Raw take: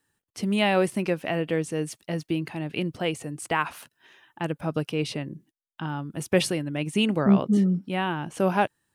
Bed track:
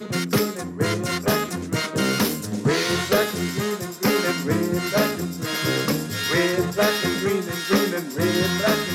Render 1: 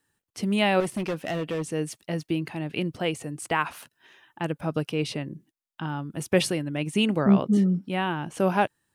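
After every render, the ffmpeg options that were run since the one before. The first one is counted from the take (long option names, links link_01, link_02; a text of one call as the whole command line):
ffmpeg -i in.wav -filter_complex "[0:a]asettb=1/sr,asplit=3[link_01][link_02][link_03];[link_01]atrim=end=0.804[link_04];[link_02]atrim=start=0.8:end=1.72,asetpts=PTS-STARTPTS,afade=type=in:duration=0.004:curve=qsin,afade=type=out:start_time=0.916:duration=0.004:curve=qsin,asoftclip=type=hard:threshold=-24.5dB[link_05];[link_03]atrim=start=1.716[link_06];[link_04][link_05]acrossfade=duration=0.004:curve1=hsin:curve2=qsin[link_07];[link_07][link_06]acrossfade=duration=0.004:curve1=qsin:curve2=hsin" out.wav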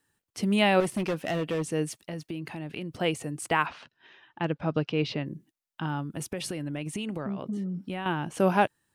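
ffmpeg -i in.wav -filter_complex "[0:a]asettb=1/sr,asplit=3[link_01][link_02][link_03];[link_01]atrim=end=1.914[link_04];[link_02]atrim=start=1.91:end=2.92,asetpts=PTS-STARTPTS,afade=type=in:duration=0.004:curve=qsin,afade=type=out:start_time=1.006:duration=0.004:curve=qsin,acompressor=threshold=-34dB:ratio=3:attack=3.2:release=140:knee=1:detection=peak[link_05];[link_03]atrim=start=2.916[link_06];[link_04][link_05]acrossfade=duration=0.004:curve1=hsin:curve2=qsin[link_07];[link_07][link_06]acrossfade=duration=0.004:curve1=qsin:curve2=hsin,asettb=1/sr,asplit=3[link_08][link_09][link_10];[link_08]atrim=end=3.664[link_11];[link_09]atrim=start=3.66:end=5.26,asetpts=PTS-STARTPTS,afade=type=in:duration=0.004:curve=qsin,afade=type=out:start_time=1.596:duration=0.004:curve=qsin,lowpass=frequency=4900:width=0.5412,lowpass=frequency=4900:width=1.3066[link_12];[link_10]atrim=start=5.256[link_13];[link_11][link_12]acrossfade=duration=0.004:curve1=hsin:curve2=qsin[link_14];[link_14][link_13]acrossfade=duration=0.004:curve1=qsin:curve2=hsin,asettb=1/sr,asplit=3[link_15][link_16][link_17];[link_15]atrim=end=6.034[link_18];[link_16]atrim=start=6.03:end=8.06,asetpts=PTS-STARTPTS,afade=type=in:duration=0.004:curve=qsin,afade=type=out:start_time=2.026:duration=0.004:curve=qsin,acompressor=threshold=-29dB:ratio=12:attack=3.2:release=140:knee=1:detection=peak[link_19];[link_17]atrim=start=8.056[link_20];[link_18][link_19]acrossfade=duration=0.004:curve1=hsin:curve2=qsin[link_21];[link_21][link_20]acrossfade=duration=0.004:curve1=qsin:curve2=hsin" out.wav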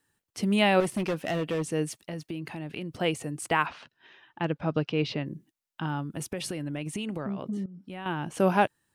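ffmpeg -i in.wav -filter_complex "[0:a]asplit=2[link_01][link_02];[link_01]atrim=end=7.66,asetpts=PTS-STARTPTS,afade=type=out:start_time=7.656:duration=0.004:curve=hsin:silence=0.149624[link_03];[link_02]atrim=start=7.66,asetpts=PTS-STARTPTS,afade=type=in:duration=0.64:silence=0.149624[link_04];[link_03][link_04]concat=n=2:v=0:a=1" out.wav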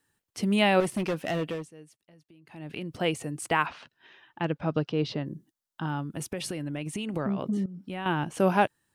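ffmpeg -i in.wav -filter_complex "[0:a]asettb=1/sr,asplit=3[link_01][link_02][link_03];[link_01]atrim=end=4.794[link_04];[link_02]atrim=start=4.79:end=5.87,asetpts=PTS-STARTPTS,afade=type=in:duration=0.004:curve=qsin,afade=type=out:start_time=1.076:duration=0.004:curve=qsin,equalizer=frequency=2400:width_type=o:width=0.52:gain=-9[link_05];[link_03]atrim=start=5.866[link_06];[link_04][link_05]acrossfade=duration=0.004:curve1=hsin:curve2=qsin[link_07];[link_07][link_06]acrossfade=duration=0.004:curve1=qsin:curve2=hsin,asplit=5[link_08][link_09][link_10][link_11][link_12];[link_08]atrim=end=1.7,asetpts=PTS-STARTPTS,afade=type=out:start_time=1.44:duration=0.26:silence=0.0944061[link_13];[link_09]atrim=start=1.7:end=2.46,asetpts=PTS-STARTPTS,volume=-20.5dB[link_14];[link_10]atrim=start=2.46:end=7.142,asetpts=PTS-STARTPTS,afade=type=in:duration=0.26:silence=0.0944061[link_15];[link_11]atrim=start=7.138:end=8.242,asetpts=PTS-STARTPTS,volume=4dB[link_16];[link_12]atrim=start=8.238[link_17];[link_13][link_14][link_15]concat=n=3:v=0:a=1[link_18];[link_18][link_16]acrossfade=duration=0.004:curve1=hsin:curve2=hsin[link_19];[link_19][link_17]acrossfade=duration=0.004:curve1=hsin:curve2=hsin" out.wav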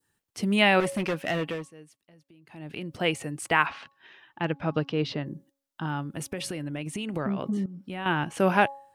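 ffmpeg -i in.wav -af "bandreject=frequency=276.5:width_type=h:width=4,bandreject=frequency=553:width_type=h:width=4,bandreject=frequency=829.5:width_type=h:width=4,bandreject=frequency=1106:width_type=h:width=4,adynamicequalizer=threshold=0.01:dfrequency=2000:dqfactor=0.93:tfrequency=2000:tqfactor=0.93:attack=5:release=100:ratio=0.375:range=3:mode=boostabove:tftype=bell" out.wav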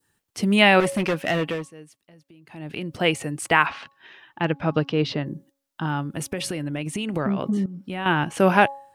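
ffmpeg -i in.wav -af "volume=5dB,alimiter=limit=-3dB:level=0:latency=1" out.wav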